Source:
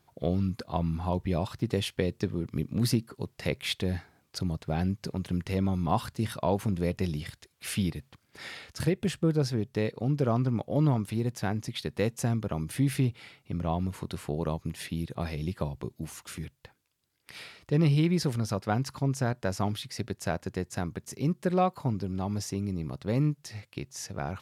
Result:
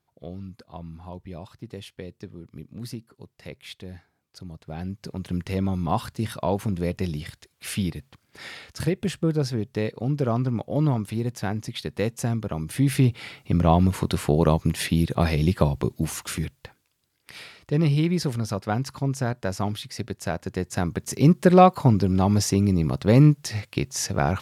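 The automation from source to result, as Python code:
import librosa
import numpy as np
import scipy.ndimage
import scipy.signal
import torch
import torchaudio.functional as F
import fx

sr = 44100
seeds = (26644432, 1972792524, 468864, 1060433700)

y = fx.gain(x, sr, db=fx.line((4.41, -9.5), (5.36, 2.5), (12.63, 2.5), (13.37, 11.5), (16.15, 11.5), (17.43, 2.5), (20.38, 2.5), (21.23, 11.5)))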